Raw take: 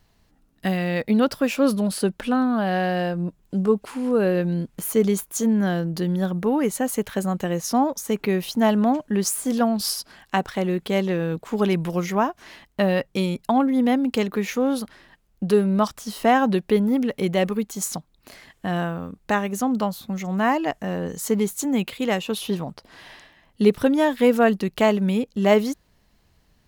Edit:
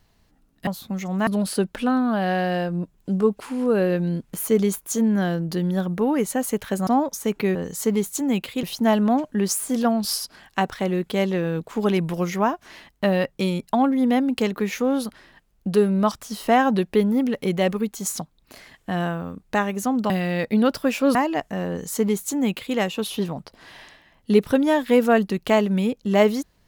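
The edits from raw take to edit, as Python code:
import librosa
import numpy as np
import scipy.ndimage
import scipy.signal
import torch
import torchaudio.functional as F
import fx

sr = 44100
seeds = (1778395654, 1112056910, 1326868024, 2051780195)

y = fx.edit(x, sr, fx.swap(start_s=0.67, length_s=1.05, other_s=19.86, other_length_s=0.6),
    fx.cut(start_s=7.32, length_s=0.39),
    fx.duplicate(start_s=20.99, length_s=1.08, to_s=8.39), tone=tone)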